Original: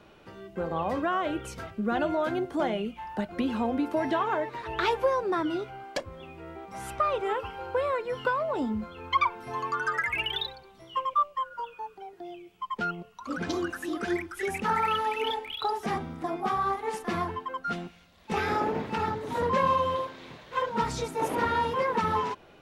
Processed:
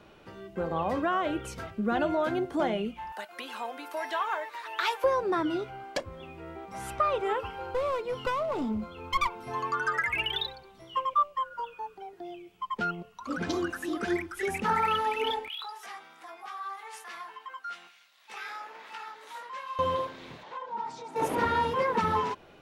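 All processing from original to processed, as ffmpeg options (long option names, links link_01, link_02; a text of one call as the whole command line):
ffmpeg -i in.wav -filter_complex "[0:a]asettb=1/sr,asplit=3[link_01][link_02][link_03];[link_01]atrim=end=3.124[link_04];[link_02]atrim=start=3.12:end=5.04,asetpts=PTS-STARTPTS,afade=type=in:duration=0.004:curve=qsin,afade=type=out:start_time=1.916:duration=0.004:curve=qsin,highpass=870,highshelf=frequency=9000:gain=11.5[link_05];[link_03]atrim=start=5.036[link_06];[link_04][link_05]acrossfade=duration=0.004:curve1=hsin:curve2=qsin[link_07];[link_07][link_06]acrossfade=duration=0.004:curve1=qsin:curve2=hsin,asettb=1/sr,asplit=3[link_08][link_09][link_10];[link_08]atrim=end=7.714[link_11];[link_09]atrim=start=7.71:end=9.48,asetpts=PTS-STARTPTS,afade=type=in:duration=0.004:curve=qsin,afade=type=out:start_time=1.766:duration=0.004:curve=qsin,aeval=exprs='clip(val(0),-1,0.0355)':channel_layout=same,equalizer=frequency=1700:width=5.8:gain=-11[link_12];[link_10]atrim=start=9.476[link_13];[link_11][link_12]acrossfade=duration=0.004:curve1=hsin:curve2=qsin[link_14];[link_14][link_13]acrossfade=duration=0.004:curve1=qsin:curve2=hsin,asettb=1/sr,asplit=3[link_15][link_16][link_17];[link_15]atrim=end=15.484[link_18];[link_16]atrim=start=15.48:end=19.79,asetpts=PTS-STARTPTS,afade=type=in:duration=0.004:curve=qsin,afade=type=out:start_time=4.306:duration=0.004:curve=qsin,acompressor=threshold=-35dB:ratio=2.5:attack=3.2:release=140:knee=1:detection=peak,highpass=1200,asplit=2[link_19][link_20];[link_20]adelay=18,volume=-7dB[link_21];[link_19][link_21]amix=inputs=2:normalize=0,atrim=end_sample=190071[link_22];[link_17]atrim=start=19.786[link_23];[link_18][link_22]acrossfade=duration=0.004:curve1=hsin:curve2=qsin[link_24];[link_24][link_23]acrossfade=duration=0.004:curve1=qsin:curve2=hsin,asettb=1/sr,asplit=3[link_25][link_26][link_27];[link_25]atrim=end=20.434[link_28];[link_26]atrim=start=20.43:end=21.16,asetpts=PTS-STARTPTS,afade=type=in:duration=0.004:curve=qsin,afade=type=out:start_time=0.726:duration=0.004:curve=qsin,acompressor=threshold=-43dB:ratio=4:attack=3.2:release=140:knee=1:detection=peak,highpass=230,lowpass=6400,equalizer=frequency=870:width_type=o:width=0.43:gain=14[link_29];[link_27]atrim=start=21.156[link_30];[link_28][link_29]acrossfade=duration=0.004:curve1=hsin:curve2=qsin[link_31];[link_31][link_30]acrossfade=duration=0.004:curve1=qsin:curve2=hsin" out.wav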